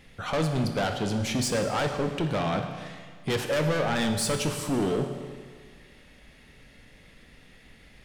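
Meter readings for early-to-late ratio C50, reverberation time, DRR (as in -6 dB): 6.5 dB, 1.8 s, 5.0 dB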